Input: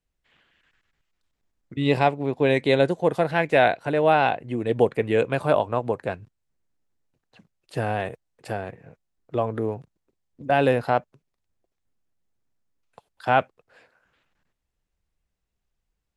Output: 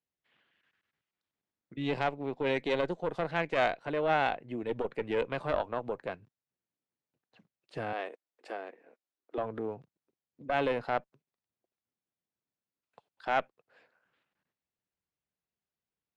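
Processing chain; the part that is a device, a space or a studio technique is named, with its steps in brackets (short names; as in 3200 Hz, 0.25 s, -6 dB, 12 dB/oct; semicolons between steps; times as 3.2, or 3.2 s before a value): valve radio (BPF 140–5300 Hz; tube stage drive 10 dB, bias 0.65; core saturation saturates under 420 Hz); 7.93–9.38 steep high-pass 260 Hz 36 dB/oct; gain -5 dB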